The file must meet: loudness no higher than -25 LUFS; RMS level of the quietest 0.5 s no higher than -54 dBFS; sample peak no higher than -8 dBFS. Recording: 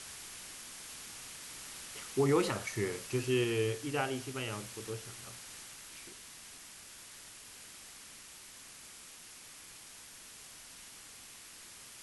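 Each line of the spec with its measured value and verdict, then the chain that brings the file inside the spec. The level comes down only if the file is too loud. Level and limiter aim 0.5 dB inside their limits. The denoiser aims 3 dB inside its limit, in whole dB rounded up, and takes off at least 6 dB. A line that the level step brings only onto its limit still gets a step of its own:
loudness -38.0 LUFS: pass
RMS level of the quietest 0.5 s -52 dBFS: fail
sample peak -18.0 dBFS: pass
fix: noise reduction 6 dB, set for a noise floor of -52 dBFS

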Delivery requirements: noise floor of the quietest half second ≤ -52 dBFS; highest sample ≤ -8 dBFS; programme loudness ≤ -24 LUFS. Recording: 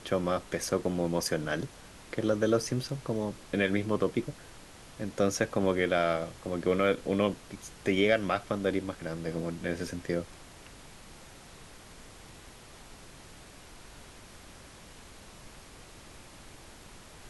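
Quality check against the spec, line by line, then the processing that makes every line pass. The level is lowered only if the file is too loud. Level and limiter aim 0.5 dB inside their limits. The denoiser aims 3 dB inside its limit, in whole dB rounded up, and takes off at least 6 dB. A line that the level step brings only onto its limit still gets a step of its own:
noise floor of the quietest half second -50 dBFS: fail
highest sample -12.0 dBFS: pass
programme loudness -30.5 LUFS: pass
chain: noise reduction 6 dB, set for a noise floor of -50 dBFS

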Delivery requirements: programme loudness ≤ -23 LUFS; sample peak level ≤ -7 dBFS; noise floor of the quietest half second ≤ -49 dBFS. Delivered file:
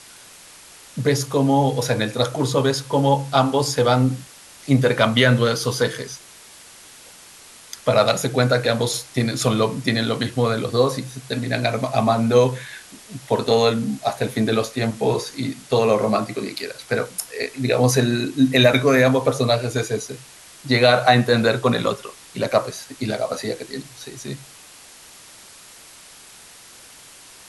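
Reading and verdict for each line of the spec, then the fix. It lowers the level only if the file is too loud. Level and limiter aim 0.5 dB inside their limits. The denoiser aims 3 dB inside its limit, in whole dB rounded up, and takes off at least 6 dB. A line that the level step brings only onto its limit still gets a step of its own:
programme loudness -20.0 LUFS: fail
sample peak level -3.0 dBFS: fail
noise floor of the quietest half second -45 dBFS: fail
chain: noise reduction 6 dB, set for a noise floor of -45 dBFS; trim -3.5 dB; peak limiter -7.5 dBFS

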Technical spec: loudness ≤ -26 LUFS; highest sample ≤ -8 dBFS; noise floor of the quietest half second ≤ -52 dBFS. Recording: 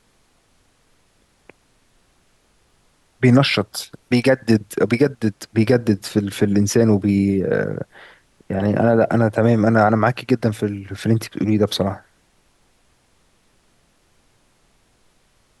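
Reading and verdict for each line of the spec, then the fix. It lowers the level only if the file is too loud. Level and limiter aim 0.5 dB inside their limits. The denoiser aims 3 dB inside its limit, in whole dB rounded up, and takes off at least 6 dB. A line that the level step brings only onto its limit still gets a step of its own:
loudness -18.5 LUFS: fail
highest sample -3.5 dBFS: fail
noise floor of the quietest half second -60 dBFS: pass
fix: trim -8 dB

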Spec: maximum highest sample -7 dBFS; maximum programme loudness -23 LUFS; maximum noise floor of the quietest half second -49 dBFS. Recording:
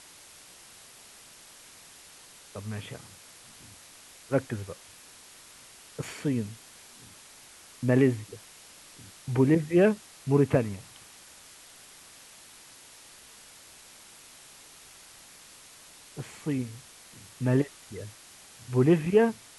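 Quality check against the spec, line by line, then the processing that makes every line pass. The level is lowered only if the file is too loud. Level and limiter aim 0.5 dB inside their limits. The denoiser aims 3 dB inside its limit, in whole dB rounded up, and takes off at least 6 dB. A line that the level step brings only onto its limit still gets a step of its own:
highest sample -10.0 dBFS: pass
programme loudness -27.0 LUFS: pass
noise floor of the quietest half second -52 dBFS: pass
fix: none needed

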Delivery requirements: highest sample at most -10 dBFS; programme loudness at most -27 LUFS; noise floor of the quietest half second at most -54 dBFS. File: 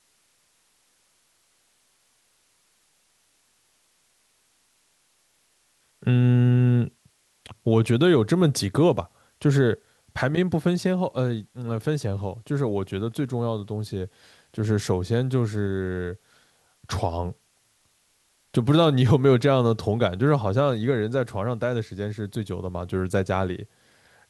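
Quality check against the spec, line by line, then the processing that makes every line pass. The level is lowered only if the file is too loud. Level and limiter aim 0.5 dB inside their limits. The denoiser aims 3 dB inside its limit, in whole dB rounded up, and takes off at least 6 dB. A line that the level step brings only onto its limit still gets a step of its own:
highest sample -6.0 dBFS: fail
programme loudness -24.0 LUFS: fail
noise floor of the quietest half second -66 dBFS: pass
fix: trim -3.5 dB; peak limiter -10.5 dBFS

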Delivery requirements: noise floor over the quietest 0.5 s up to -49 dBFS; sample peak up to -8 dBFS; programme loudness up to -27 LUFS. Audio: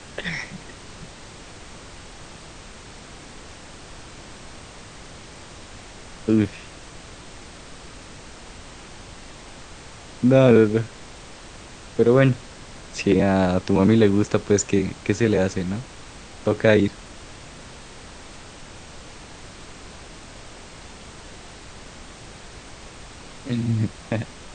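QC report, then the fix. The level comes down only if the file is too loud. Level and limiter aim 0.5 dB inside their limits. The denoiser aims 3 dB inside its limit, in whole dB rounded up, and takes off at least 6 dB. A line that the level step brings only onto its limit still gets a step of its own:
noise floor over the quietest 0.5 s -41 dBFS: fail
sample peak -2.0 dBFS: fail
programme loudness -21.0 LUFS: fail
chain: noise reduction 6 dB, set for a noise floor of -41 dBFS; trim -6.5 dB

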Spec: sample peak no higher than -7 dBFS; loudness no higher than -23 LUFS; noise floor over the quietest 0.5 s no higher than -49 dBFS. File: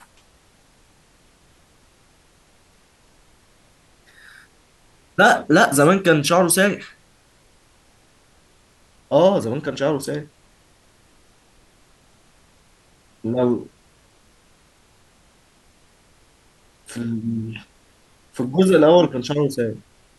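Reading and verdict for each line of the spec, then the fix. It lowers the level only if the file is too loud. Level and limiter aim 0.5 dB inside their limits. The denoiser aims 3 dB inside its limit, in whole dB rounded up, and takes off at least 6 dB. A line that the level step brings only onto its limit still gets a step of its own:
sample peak -3.0 dBFS: fail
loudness -18.0 LUFS: fail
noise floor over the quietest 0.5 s -56 dBFS: pass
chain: trim -5.5 dB

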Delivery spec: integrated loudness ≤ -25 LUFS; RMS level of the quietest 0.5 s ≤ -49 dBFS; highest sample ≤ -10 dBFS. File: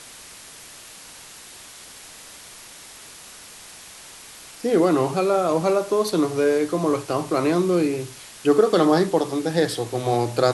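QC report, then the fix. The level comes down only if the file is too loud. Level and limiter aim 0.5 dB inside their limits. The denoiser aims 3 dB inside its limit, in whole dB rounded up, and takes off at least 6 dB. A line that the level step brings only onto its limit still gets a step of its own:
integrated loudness -21.0 LUFS: fail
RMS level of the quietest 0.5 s -43 dBFS: fail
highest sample -4.0 dBFS: fail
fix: noise reduction 6 dB, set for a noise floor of -43 dBFS; trim -4.5 dB; peak limiter -10.5 dBFS

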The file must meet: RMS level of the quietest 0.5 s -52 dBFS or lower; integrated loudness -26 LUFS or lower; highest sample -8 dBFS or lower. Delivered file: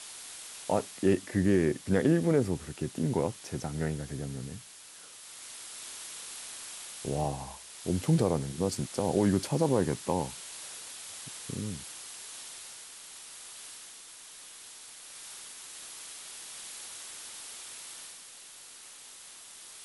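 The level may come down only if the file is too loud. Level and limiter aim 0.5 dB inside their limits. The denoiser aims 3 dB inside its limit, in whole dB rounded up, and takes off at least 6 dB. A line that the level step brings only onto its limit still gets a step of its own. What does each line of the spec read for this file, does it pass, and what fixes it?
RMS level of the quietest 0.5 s -50 dBFS: fail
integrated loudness -32.5 LUFS: pass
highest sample -12.5 dBFS: pass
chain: noise reduction 6 dB, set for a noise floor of -50 dBFS

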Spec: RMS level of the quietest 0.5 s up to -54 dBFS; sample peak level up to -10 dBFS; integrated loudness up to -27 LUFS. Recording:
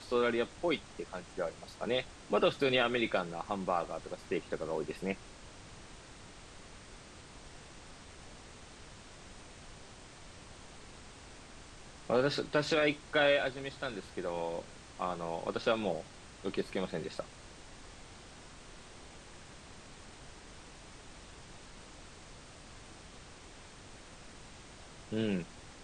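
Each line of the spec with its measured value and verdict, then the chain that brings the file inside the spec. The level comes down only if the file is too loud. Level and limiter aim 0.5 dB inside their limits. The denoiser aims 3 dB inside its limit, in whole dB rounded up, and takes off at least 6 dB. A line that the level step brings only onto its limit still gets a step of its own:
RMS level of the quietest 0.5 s -52 dBFS: fail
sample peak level -16.0 dBFS: pass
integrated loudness -34.0 LUFS: pass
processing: noise reduction 6 dB, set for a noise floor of -52 dBFS

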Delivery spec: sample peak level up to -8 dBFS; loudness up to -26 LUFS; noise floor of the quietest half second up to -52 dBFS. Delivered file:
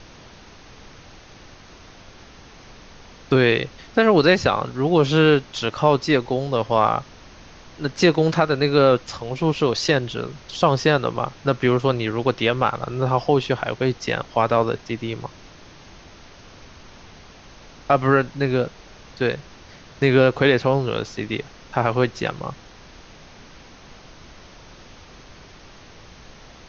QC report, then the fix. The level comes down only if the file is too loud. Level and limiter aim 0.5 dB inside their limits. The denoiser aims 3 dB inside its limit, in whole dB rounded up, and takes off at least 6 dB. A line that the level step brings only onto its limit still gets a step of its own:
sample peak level -3.0 dBFS: fail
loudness -20.5 LUFS: fail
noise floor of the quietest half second -45 dBFS: fail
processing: noise reduction 6 dB, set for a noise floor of -45 dBFS; trim -6 dB

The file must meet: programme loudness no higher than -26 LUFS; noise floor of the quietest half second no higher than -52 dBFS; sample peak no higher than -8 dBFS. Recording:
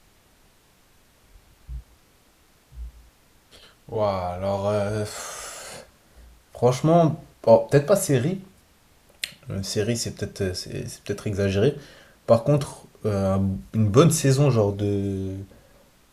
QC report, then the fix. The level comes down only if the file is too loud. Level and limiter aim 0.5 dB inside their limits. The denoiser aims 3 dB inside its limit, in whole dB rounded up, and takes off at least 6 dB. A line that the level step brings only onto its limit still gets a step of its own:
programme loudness -23.0 LUFS: fail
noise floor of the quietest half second -58 dBFS: pass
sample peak -3.5 dBFS: fail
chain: trim -3.5 dB; peak limiter -8.5 dBFS

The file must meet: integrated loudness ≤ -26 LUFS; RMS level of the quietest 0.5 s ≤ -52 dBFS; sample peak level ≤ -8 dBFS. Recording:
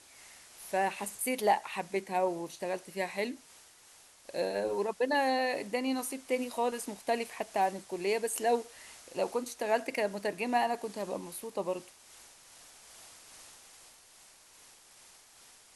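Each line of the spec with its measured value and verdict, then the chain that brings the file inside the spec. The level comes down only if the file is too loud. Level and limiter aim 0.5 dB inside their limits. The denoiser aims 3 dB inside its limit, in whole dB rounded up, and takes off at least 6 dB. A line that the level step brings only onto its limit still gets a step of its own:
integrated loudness -33.0 LUFS: pass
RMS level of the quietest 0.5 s -58 dBFS: pass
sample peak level -15.0 dBFS: pass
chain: none needed

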